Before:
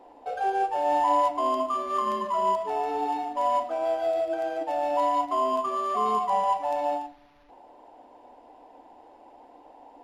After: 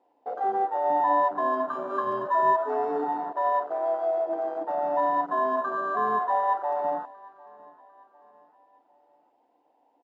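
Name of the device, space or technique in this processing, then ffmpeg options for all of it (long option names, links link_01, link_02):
over-cleaned archive recording: -filter_complex "[0:a]highpass=140,lowpass=7400,afwtdn=0.0447,asettb=1/sr,asplit=3[link_01][link_02][link_03];[link_01]atrim=end=1.684[link_04];[link_02]atrim=start=1.68:end=3.04,asetpts=PTS-STARTPTS,afade=type=in:duration=0.004:curve=qsin,afade=type=out:start_time=1.356:duration=0.004:curve=qsin,aecho=1:1:7.3:0.92,atrim=end_sample=59976[link_05];[link_03]atrim=start=3.036[link_06];[link_04][link_05]acrossfade=duration=0.004:curve1=hsin:curve2=qsin[link_07];[link_07][link_06]acrossfade=duration=0.004:curve1=qsin:curve2=hsin,aecho=1:1:750|1500|2250:0.0708|0.0319|0.0143"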